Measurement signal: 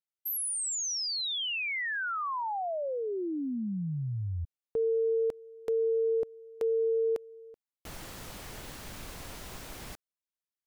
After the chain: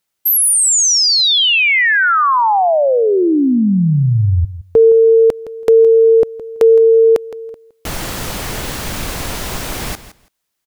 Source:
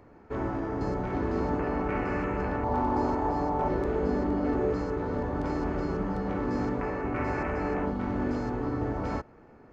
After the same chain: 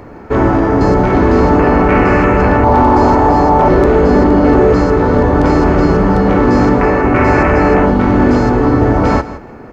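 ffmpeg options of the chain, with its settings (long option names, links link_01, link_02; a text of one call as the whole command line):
ffmpeg -i in.wav -filter_complex "[0:a]apsyclip=23.5dB,asplit=2[link_01][link_02];[link_02]aecho=0:1:165|330:0.178|0.0285[link_03];[link_01][link_03]amix=inputs=2:normalize=0,volume=-3dB" out.wav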